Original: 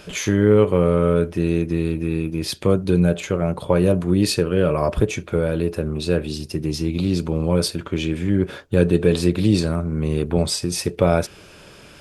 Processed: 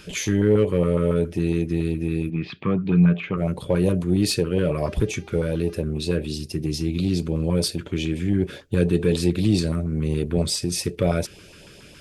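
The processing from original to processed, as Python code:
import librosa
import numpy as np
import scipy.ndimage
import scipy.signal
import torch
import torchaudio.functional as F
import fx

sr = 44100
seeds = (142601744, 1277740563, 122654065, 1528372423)

p1 = 10.0 ** (-16.0 / 20.0) * np.tanh(x / 10.0 ** (-16.0 / 20.0))
p2 = x + (p1 * librosa.db_to_amplitude(-4.5))
p3 = fx.dmg_buzz(p2, sr, base_hz=400.0, harmonics=16, level_db=-42.0, tilt_db=-7, odd_only=False, at=(4.86, 5.8), fade=0.02)
p4 = fx.filter_lfo_notch(p3, sr, shape='saw_up', hz=7.2, low_hz=580.0, high_hz=1600.0, q=0.86)
p5 = fx.cabinet(p4, sr, low_hz=130.0, low_slope=12, high_hz=2900.0, hz=(170.0, 350.0, 540.0, 1200.0, 2400.0), db=(6, -4, -9, 10, 4), at=(2.29, 3.36), fade=0.02)
y = p5 * librosa.db_to_amplitude(-4.5)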